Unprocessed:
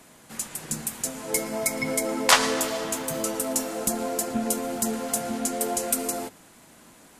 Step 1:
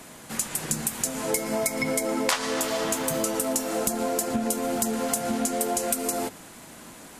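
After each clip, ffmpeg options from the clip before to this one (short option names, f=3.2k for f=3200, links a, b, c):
-af "acompressor=threshold=-30dB:ratio=6,volume=7dB"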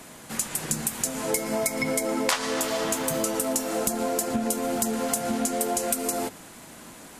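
-af anull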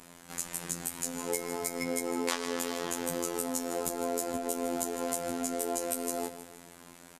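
-af "aecho=1:1:157|314|471|628|785:0.237|0.109|0.0502|0.0231|0.0106,afftfilt=real='hypot(re,im)*cos(PI*b)':imag='0':win_size=2048:overlap=0.75,volume=-4.5dB"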